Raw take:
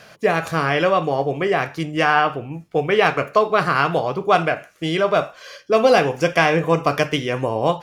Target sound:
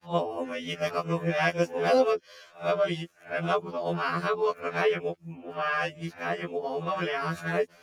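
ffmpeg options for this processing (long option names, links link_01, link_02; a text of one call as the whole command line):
ffmpeg -i in.wav -af "areverse,afftfilt=real='re*2*eq(mod(b,4),0)':imag='im*2*eq(mod(b,4),0)':win_size=2048:overlap=0.75,volume=-8dB" out.wav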